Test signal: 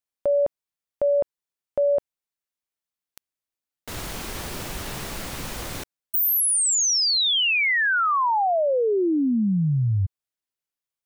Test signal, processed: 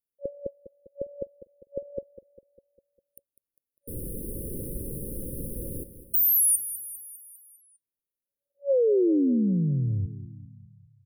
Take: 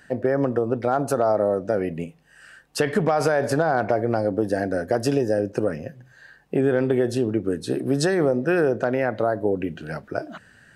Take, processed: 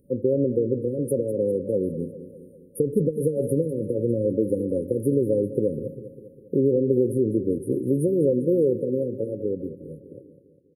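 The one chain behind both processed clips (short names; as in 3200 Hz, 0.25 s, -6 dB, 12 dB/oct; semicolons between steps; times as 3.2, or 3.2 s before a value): ending faded out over 2.08 s; FFT band-reject 560–9200 Hz; on a send: feedback echo 0.201 s, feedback 56%, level -13.5 dB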